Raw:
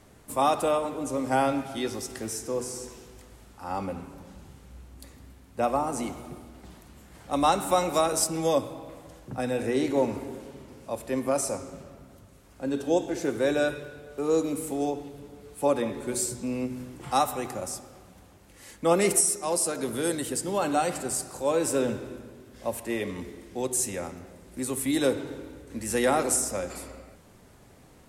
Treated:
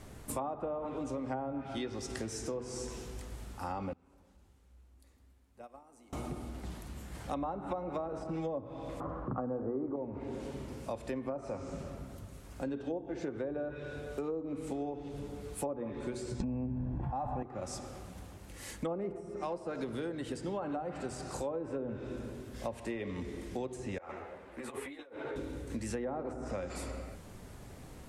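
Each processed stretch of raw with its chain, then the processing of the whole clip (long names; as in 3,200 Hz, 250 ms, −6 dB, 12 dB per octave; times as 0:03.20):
0:03.93–0:06.13: parametric band 140 Hz −9.5 dB 0.82 octaves + downward compressor 4 to 1, threshold −43 dBFS + noise gate −41 dBFS, range −19 dB
0:09.00–0:09.96: low-pass with resonance 1,200 Hz, resonance Q 6.8 + parametric band 290 Hz +7.5 dB 2.9 octaves
0:16.40–0:17.43: low-shelf EQ 98 Hz +5 dB + comb filter 1.2 ms, depth 58% + envelope flattener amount 70%
0:23.98–0:25.36: three-way crossover with the lows and the highs turned down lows −19 dB, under 430 Hz, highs −24 dB, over 2,700 Hz + compressor whose output falls as the input rises −44 dBFS + string-ensemble chorus
whole clip: treble cut that deepens with the level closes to 900 Hz, closed at −20.5 dBFS; low-shelf EQ 110 Hz +7.5 dB; downward compressor 6 to 1, threshold −37 dBFS; level +2 dB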